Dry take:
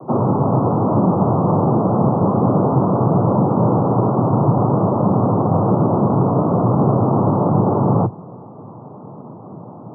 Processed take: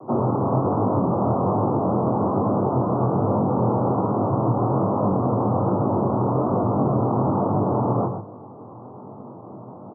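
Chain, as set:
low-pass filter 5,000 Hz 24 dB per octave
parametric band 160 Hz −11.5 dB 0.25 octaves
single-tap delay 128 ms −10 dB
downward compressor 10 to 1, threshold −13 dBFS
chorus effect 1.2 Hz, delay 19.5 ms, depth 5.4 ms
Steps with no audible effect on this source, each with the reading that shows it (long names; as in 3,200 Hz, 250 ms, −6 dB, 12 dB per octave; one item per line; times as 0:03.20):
low-pass filter 5,000 Hz: nothing at its input above 1,400 Hz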